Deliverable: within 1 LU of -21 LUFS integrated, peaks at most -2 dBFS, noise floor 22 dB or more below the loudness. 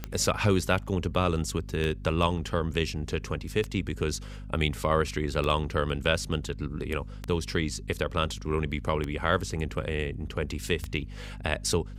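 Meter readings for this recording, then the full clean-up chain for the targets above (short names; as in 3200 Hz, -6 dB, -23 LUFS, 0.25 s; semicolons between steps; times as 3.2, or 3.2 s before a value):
clicks 7; hum 50 Hz; harmonics up to 250 Hz; hum level -38 dBFS; loudness -29.5 LUFS; peak -7.0 dBFS; loudness target -21.0 LUFS
-> de-click; notches 50/100/150/200/250 Hz; gain +8.5 dB; limiter -2 dBFS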